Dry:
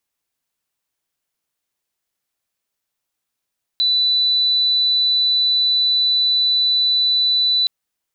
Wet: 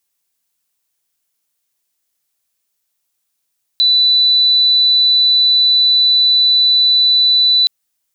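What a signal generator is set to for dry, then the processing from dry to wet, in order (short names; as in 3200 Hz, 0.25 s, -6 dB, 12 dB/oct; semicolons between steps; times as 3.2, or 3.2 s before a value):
tone sine 3980 Hz -13.5 dBFS 3.87 s
high shelf 3800 Hz +10.5 dB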